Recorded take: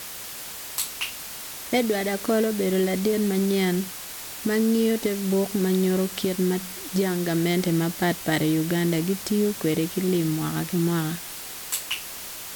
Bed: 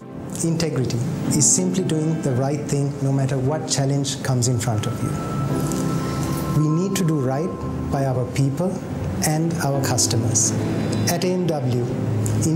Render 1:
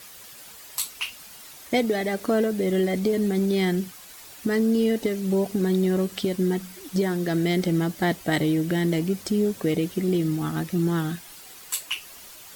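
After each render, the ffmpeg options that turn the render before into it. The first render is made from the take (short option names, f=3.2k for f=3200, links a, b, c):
-af "afftdn=nr=10:nf=-37"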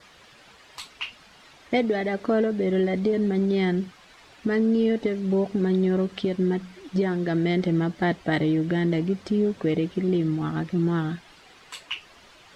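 -af "lowpass=3.3k,adynamicequalizer=threshold=0.00224:dfrequency=2600:dqfactor=4.4:tfrequency=2600:tqfactor=4.4:attack=5:release=100:ratio=0.375:range=1.5:mode=cutabove:tftype=bell"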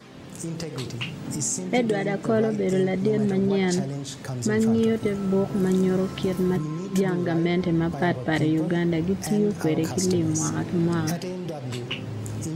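-filter_complex "[1:a]volume=-11dB[a];[0:a][a]amix=inputs=2:normalize=0"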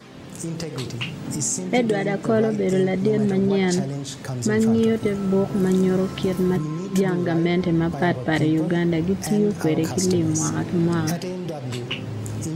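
-af "volume=2.5dB"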